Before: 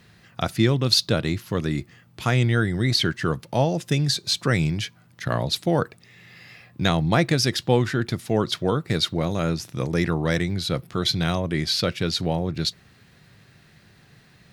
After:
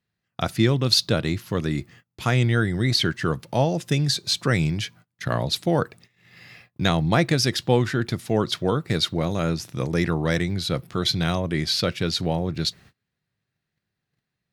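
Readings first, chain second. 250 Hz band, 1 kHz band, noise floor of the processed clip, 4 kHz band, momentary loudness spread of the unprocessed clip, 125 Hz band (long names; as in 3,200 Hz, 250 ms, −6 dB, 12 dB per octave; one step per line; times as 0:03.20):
0.0 dB, 0.0 dB, −82 dBFS, 0.0 dB, 8 LU, 0.0 dB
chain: noise gate −47 dBFS, range −28 dB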